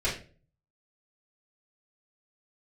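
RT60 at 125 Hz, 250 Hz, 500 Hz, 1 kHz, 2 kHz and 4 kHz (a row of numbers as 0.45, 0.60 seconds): 0.75, 0.50, 0.45, 0.30, 0.35, 0.30 seconds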